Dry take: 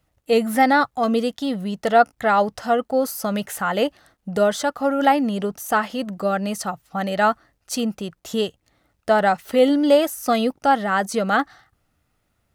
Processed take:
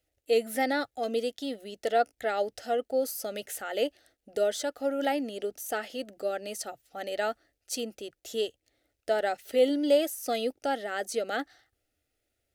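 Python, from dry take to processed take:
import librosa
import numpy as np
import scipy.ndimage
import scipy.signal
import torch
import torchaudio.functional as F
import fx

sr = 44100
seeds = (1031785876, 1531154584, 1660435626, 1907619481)

y = fx.low_shelf(x, sr, hz=140.0, db=-7.5)
y = fx.fixed_phaser(y, sr, hz=430.0, stages=4)
y = y * librosa.db_to_amplitude(-5.5)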